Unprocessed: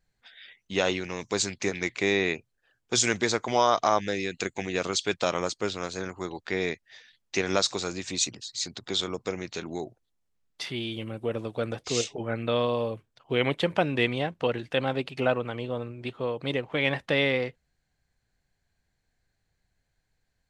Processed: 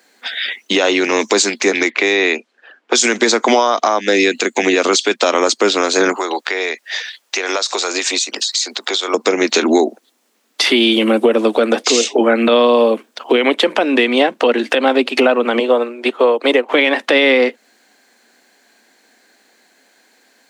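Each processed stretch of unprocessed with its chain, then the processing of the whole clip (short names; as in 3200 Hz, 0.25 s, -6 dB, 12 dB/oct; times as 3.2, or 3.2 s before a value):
1.9–2.99 low shelf 250 Hz -9 dB + low-pass opened by the level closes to 2200 Hz, open at -22.5 dBFS
6.14–9.14 HPF 510 Hz + compressor 16:1, threshold -41 dBFS
15.59–16.69 HPF 350 Hz + dynamic EQ 3900 Hz, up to -6 dB, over -47 dBFS, Q 0.89 + upward expander, over -48 dBFS
whole clip: steep high-pass 220 Hz 72 dB/oct; compressor 6:1, threshold -36 dBFS; maximiser +29 dB; gain -1.5 dB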